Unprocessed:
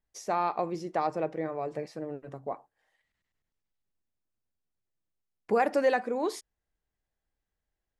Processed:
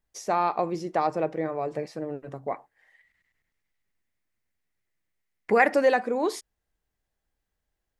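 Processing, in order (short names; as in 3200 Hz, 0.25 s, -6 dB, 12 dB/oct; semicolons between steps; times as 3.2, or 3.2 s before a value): 2.47–5.74 bell 2000 Hz +13 dB 0.52 oct; gain +4 dB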